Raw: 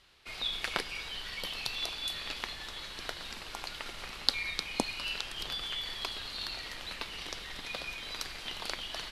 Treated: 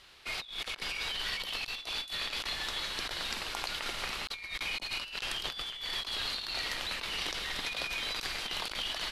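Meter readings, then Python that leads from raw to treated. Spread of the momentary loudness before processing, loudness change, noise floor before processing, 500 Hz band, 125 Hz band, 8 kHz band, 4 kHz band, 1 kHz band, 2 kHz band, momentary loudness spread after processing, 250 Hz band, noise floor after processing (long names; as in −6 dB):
8 LU, +1.5 dB, −45 dBFS, −0.5 dB, 0.0 dB, +2.0 dB, +1.5 dB, +1.5 dB, +3.0 dB, 3 LU, −4.0 dB, −48 dBFS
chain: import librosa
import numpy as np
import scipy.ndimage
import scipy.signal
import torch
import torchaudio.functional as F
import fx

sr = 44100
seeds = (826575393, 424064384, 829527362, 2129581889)

y = fx.low_shelf(x, sr, hz=320.0, db=-5.0)
y = fx.over_compress(y, sr, threshold_db=-41.0, ratio=-0.5)
y = F.gain(torch.from_numpy(y), 4.5).numpy()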